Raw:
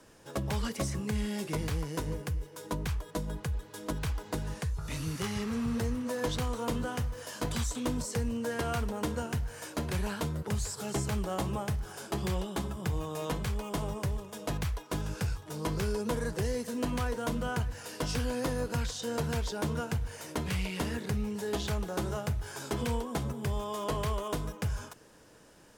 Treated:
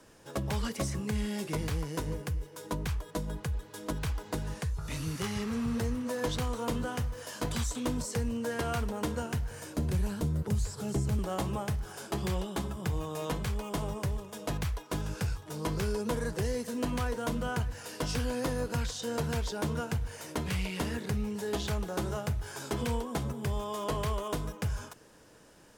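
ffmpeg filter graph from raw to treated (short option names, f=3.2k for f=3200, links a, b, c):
-filter_complex "[0:a]asettb=1/sr,asplit=3[a][b][c];[a]atrim=end=9.514[d];[b]atrim=start=9.51:end=11.19,asetpts=PTS-STARTPTS,afade=t=in:d=0.004:c=qsin,afade=t=out:st=1.676:d=0.004:c=qsin,lowshelf=f=200:g=8.5,acrossover=split=560|5000[e][f][g];[e]acompressor=threshold=-26dB:ratio=4[h];[f]acompressor=threshold=-47dB:ratio=4[i];[g]acompressor=threshold=-46dB:ratio=4[j];[h][i][j]amix=inputs=3:normalize=0[k];[c]atrim=start=11.186[l];[d][k]acrossfade=d=0.004:c1=hsin:c2=qsin[m];[m][l]acrossfade=d=0.004:c1=qsin:c2=hsin"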